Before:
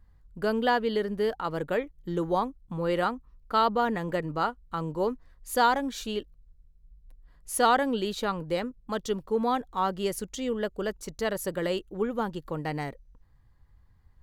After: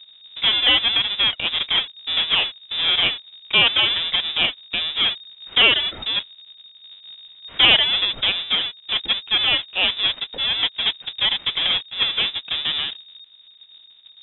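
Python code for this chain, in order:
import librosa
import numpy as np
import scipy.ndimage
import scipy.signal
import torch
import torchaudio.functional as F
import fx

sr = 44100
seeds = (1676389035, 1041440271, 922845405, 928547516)

y = fx.halfwave_hold(x, sr)
y = fx.freq_invert(y, sr, carrier_hz=3700)
y = y * 10.0 ** (3.5 / 20.0)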